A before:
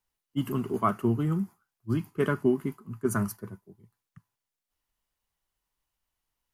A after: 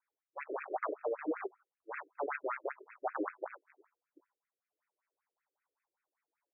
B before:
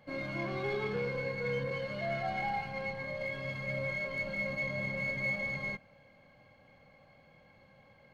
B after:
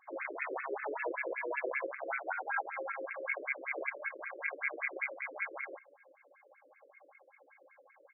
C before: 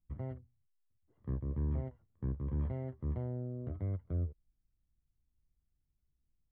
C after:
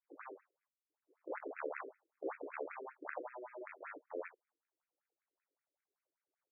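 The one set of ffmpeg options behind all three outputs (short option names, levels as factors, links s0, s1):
-filter_complex "[0:a]aresample=11025,acrusher=bits=3:mode=log:mix=0:aa=0.000001,aresample=44100,asplit=2[s0][s1];[s1]adelay=21,volume=0.708[s2];[s0][s2]amix=inputs=2:normalize=0,aeval=exprs='0.335*(cos(1*acos(clip(val(0)/0.335,-1,1)))-cos(1*PI/2))+0.0944*(cos(4*acos(clip(val(0)/0.335,-1,1)))-cos(4*PI/2))+0.15*(cos(8*acos(clip(val(0)/0.335,-1,1)))-cos(8*PI/2))':c=same,highpass=46,areverse,acompressor=threshold=0.0316:ratio=6,areverse,afftfilt=real='re*between(b*sr/1024,390*pow(1900/390,0.5+0.5*sin(2*PI*5.2*pts/sr))/1.41,390*pow(1900/390,0.5+0.5*sin(2*PI*5.2*pts/sr))*1.41)':imag='im*between(b*sr/1024,390*pow(1900/390,0.5+0.5*sin(2*PI*5.2*pts/sr))/1.41,390*pow(1900/390,0.5+0.5*sin(2*PI*5.2*pts/sr))*1.41)':win_size=1024:overlap=0.75,volume=1.5"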